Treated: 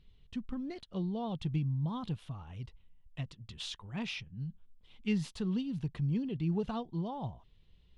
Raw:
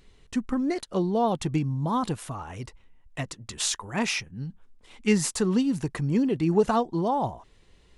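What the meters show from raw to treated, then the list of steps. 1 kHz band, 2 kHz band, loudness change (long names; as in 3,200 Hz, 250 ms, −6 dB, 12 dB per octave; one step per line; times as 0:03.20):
−16.0 dB, −13.0 dB, −10.5 dB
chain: drawn EQ curve 160 Hz 0 dB, 310 Hz −11 dB, 1,900 Hz −13 dB, 3,300 Hz −2 dB, 7,400 Hz −22 dB
level −4 dB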